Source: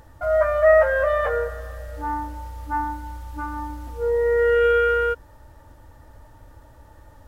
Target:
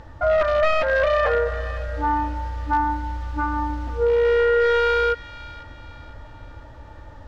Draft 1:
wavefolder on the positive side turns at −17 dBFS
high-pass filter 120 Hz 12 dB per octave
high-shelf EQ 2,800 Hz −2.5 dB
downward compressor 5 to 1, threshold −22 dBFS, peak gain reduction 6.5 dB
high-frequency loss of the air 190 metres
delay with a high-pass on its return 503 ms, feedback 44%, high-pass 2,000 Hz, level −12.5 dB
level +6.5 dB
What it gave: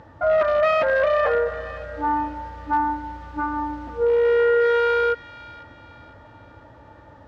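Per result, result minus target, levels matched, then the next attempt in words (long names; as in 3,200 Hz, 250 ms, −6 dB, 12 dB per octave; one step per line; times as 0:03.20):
125 Hz band −10.0 dB; 4,000 Hz band −4.0 dB
wavefolder on the positive side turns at −17 dBFS
high-shelf EQ 2,800 Hz −2.5 dB
downward compressor 5 to 1, threshold −22 dBFS, peak gain reduction 9 dB
high-frequency loss of the air 190 metres
delay with a high-pass on its return 503 ms, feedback 44%, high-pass 2,000 Hz, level −12.5 dB
level +6.5 dB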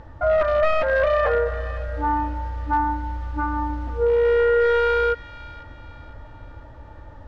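4,000 Hz band −4.5 dB
wavefolder on the positive side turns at −17 dBFS
high-shelf EQ 2,800 Hz +6.5 dB
downward compressor 5 to 1, threshold −22 dBFS, peak gain reduction 9.5 dB
high-frequency loss of the air 190 metres
delay with a high-pass on its return 503 ms, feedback 44%, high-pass 2,000 Hz, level −12.5 dB
level +6.5 dB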